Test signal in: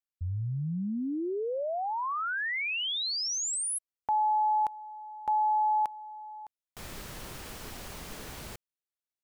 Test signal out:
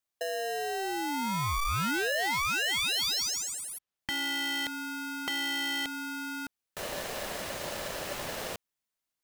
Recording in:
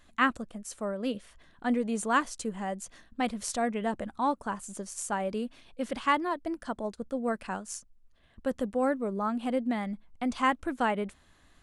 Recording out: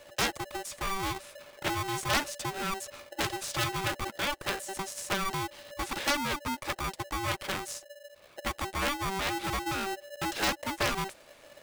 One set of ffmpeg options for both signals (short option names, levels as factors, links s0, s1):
-filter_complex "[0:a]acrossover=split=520|5200[s0][s1][s2];[s0]acompressor=threshold=0.0112:ratio=4[s3];[s1]acompressor=threshold=0.0355:ratio=2[s4];[s2]acompressor=threshold=0.00398:ratio=10[s5];[s3][s4][s5]amix=inputs=3:normalize=0,aeval=exprs='0.168*(cos(1*acos(clip(val(0)/0.168,-1,1)))-cos(1*PI/2))+0.0015*(cos(6*acos(clip(val(0)/0.168,-1,1)))-cos(6*PI/2))+0.075*(cos(7*acos(clip(val(0)/0.168,-1,1)))-cos(7*PI/2))':c=same,aeval=exprs='val(0)*sgn(sin(2*PI*580*n/s))':c=same"